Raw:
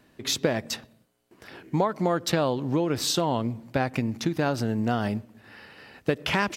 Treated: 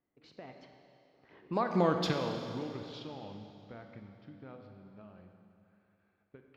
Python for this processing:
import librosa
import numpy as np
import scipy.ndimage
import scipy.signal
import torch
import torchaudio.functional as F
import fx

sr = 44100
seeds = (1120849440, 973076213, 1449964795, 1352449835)

p1 = fx.doppler_pass(x, sr, speed_mps=45, closest_m=6.2, pass_at_s=1.81)
p2 = fx.env_lowpass(p1, sr, base_hz=1800.0, full_db=-26.5)
p3 = fx.high_shelf_res(p2, sr, hz=6500.0, db=-9.0, q=1.5)
p4 = fx.level_steps(p3, sr, step_db=10)
p5 = p3 + (p4 * librosa.db_to_amplitude(2.0))
p6 = fx.rev_schroeder(p5, sr, rt60_s=2.7, comb_ms=30, drr_db=4.5)
y = p6 * librosa.db_to_amplitude(-7.0)